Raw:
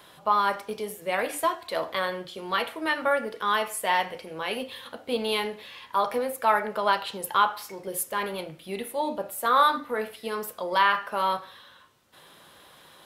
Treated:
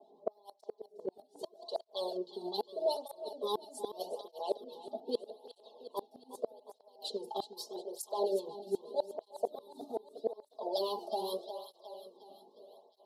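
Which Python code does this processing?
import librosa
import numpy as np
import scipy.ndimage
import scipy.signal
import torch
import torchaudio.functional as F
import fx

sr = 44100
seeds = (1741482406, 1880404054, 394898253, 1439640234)

y = scipy.signal.sosfilt(scipy.signal.butter(4, 310.0, 'highpass', fs=sr, output='sos'), x)
y = fx.env_lowpass(y, sr, base_hz=1000.0, full_db=-21.0)
y = scipy.signal.sosfilt(scipy.signal.ellip(3, 1.0, 50, [740.0, 4200.0], 'bandstop', fs=sr, output='sos'), y)
y = y + 0.97 * np.pad(y, (int(4.7 * sr / 1000.0), 0))[:len(y)]
y = fx.harmonic_tremolo(y, sr, hz=7.3, depth_pct=70, crossover_hz=950.0)
y = fx.gate_flip(y, sr, shuts_db=-23.0, range_db=-34)
y = fx.echo_feedback(y, sr, ms=361, feedback_pct=56, wet_db=-12.0)
y = fx.flanger_cancel(y, sr, hz=0.81, depth_ms=2.1)
y = y * 10.0 ** (4.5 / 20.0)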